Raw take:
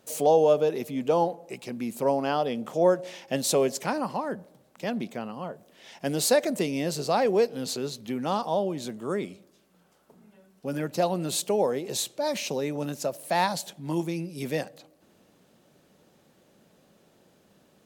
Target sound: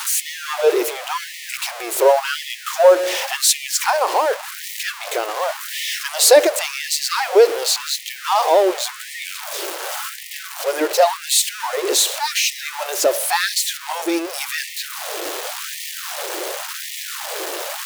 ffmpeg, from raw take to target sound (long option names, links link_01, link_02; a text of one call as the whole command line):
ffmpeg -i in.wav -af "aeval=exprs='val(0)+0.5*0.0299*sgn(val(0))':channel_layout=same,acontrast=75,afftfilt=real='re*gte(b*sr/1024,300*pow(1800/300,0.5+0.5*sin(2*PI*0.9*pts/sr)))':imag='im*gte(b*sr/1024,300*pow(1800/300,0.5+0.5*sin(2*PI*0.9*pts/sr)))':win_size=1024:overlap=0.75,volume=4.5dB" out.wav